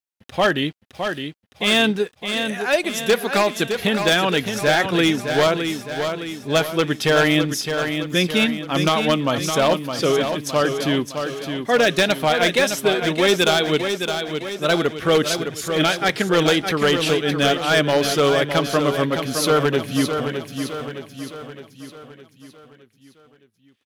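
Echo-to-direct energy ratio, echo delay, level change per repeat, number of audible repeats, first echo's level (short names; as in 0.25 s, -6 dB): -5.5 dB, 0.613 s, -6.0 dB, 5, -7.0 dB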